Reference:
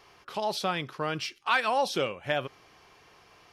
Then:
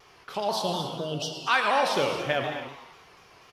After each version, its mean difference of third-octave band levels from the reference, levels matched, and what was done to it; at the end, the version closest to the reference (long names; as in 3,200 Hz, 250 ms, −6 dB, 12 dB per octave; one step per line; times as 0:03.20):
6.0 dB: healed spectral selection 0:00.51–0:01.36, 740–2,700 Hz both
on a send: echo with shifted repeats 109 ms, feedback 56%, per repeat +120 Hz, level −13 dB
on the sum: reverb whose tail is shaped and stops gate 300 ms flat, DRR 4.5 dB
pitch modulation by a square or saw wave saw down 4.1 Hz, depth 100 cents
level +1.5 dB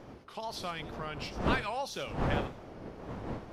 9.5 dB: wind on the microphone 500 Hz −28 dBFS
dynamic equaliser 350 Hz, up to −5 dB, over −35 dBFS, Q 0.82
on a send: delay with a high-pass on its return 92 ms, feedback 34%, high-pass 4,800 Hz, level −9 dB
on the sum: tape wow and flutter 100 cents
level −7.5 dB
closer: first